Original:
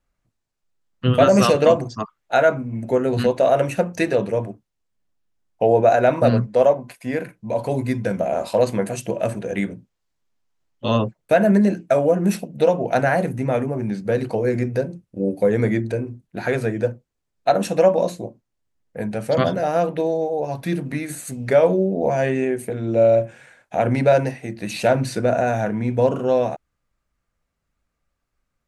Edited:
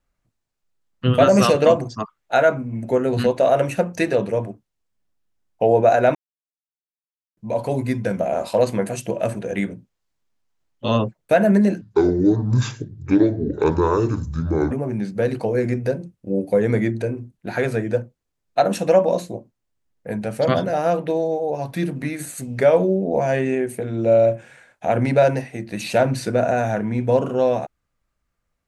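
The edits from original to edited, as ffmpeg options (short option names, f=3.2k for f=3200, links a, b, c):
-filter_complex "[0:a]asplit=5[a][b][c][d][e];[a]atrim=end=6.15,asetpts=PTS-STARTPTS,afade=t=out:st=6.146:d=0.004:c=hsin[f];[b]atrim=start=6.15:end=7.37,asetpts=PTS-STARTPTS,volume=0[g];[c]atrim=start=7.37:end=11.814,asetpts=PTS-STARTPTS,afade=t=in:d=0.004:c=hsin[h];[d]atrim=start=11.81:end=13.61,asetpts=PTS-STARTPTS,asetrate=27342,aresample=44100,atrim=end_sample=128032,asetpts=PTS-STARTPTS[i];[e]atrim=start=13.606[j];[f][g][h]concat=n=3:v=0:a=1[k];[k][i]acrossfade=d=0.004:c1=hsin:c2=hsin[l];[l][j]acrossfade=d=0.004:c1=hsin:c2=hsin"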